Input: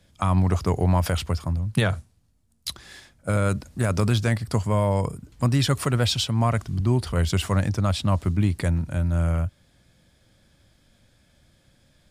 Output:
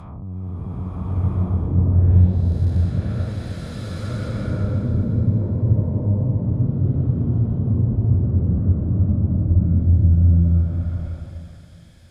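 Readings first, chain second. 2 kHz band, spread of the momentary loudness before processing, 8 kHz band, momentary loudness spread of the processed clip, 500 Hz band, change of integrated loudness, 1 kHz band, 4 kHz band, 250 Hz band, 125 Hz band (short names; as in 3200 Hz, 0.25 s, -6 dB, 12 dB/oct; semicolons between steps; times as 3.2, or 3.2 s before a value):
under -10 dB, 6 LU, under -15 dB, 14 LU, -5.5 dB, +4.0 dB, -12.0 dB, under -15 dB, +3.0 dB, +6.5 dB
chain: time blur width 0.639 s; treble ducked by the level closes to 320 Hz, closed at -25 dBFS; bloom reverb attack 1.34 s, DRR -11.5 dB; gain -4 dB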